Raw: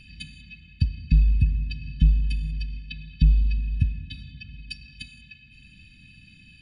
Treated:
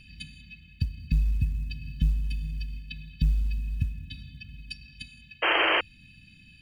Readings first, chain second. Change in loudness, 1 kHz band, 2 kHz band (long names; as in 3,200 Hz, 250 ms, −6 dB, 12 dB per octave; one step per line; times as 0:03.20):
−3.5 dB, can't be measured, +12.0 dB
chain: in parallel at −1 dB: downward compressor 4 to 1, threshold −28 dBFS, peak gain reduction 14 dB
on the sum: log-companded quantiser 8 bits
sound drawn into the spectrogram noise, 0:05.42–0:05.81, 300–3,200 Hz −15 dBFS
level −8 dB